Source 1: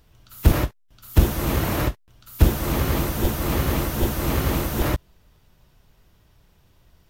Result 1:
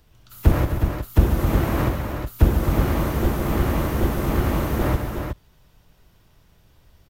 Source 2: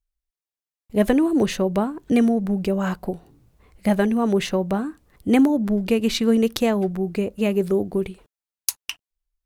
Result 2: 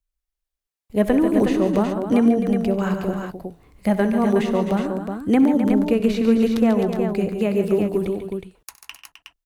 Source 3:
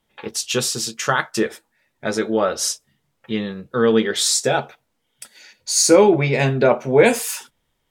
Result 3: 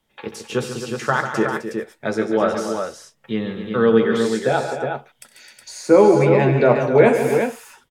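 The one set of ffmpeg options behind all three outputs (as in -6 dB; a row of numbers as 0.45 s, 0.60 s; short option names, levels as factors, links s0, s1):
-filter_complex "[0:a]acrossover=split=180|2100[s0][s1][s2];[s2]acompressor=threshold=0.00891:ratio=4[s3];[s0][s1][s3]amix=inputs=3:normalize=0,aecho=1:1:65|95|141|158|260|366:0.15|0.126|0.335|0.141|0.316|0.501"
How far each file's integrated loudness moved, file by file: +0.5 LU, +1.5 LU, 0.0 LU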